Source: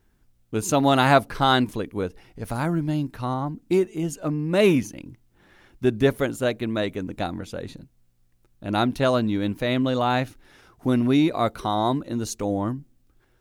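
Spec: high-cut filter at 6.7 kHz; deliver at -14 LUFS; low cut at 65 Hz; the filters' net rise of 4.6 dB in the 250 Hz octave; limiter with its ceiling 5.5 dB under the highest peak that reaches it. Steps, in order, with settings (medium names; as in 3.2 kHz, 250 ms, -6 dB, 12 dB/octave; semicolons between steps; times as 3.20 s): high-pass 65 Hz; low-pass 6.7 kHz; peaking EQ 250 Hz +5.5 dB; trim +8 dB; peak limiter -1.5 dBFS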